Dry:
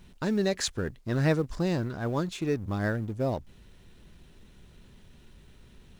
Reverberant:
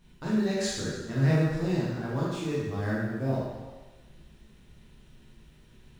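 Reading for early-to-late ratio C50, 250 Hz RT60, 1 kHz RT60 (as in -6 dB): -1.0 dB, 1.1 s, 1.3 s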